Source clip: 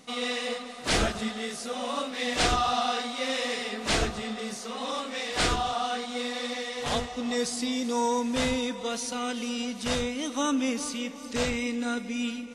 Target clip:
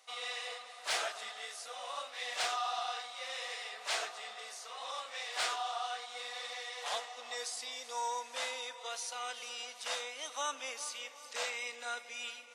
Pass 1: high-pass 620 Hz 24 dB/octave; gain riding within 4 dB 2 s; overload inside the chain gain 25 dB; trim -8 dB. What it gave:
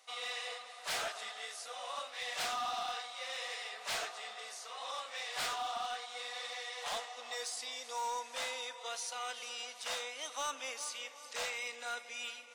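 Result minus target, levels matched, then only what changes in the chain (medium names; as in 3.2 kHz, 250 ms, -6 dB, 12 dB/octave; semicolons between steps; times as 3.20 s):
overload inside the chain: distortion +16 dB
change: overload inside the chain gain 18 dB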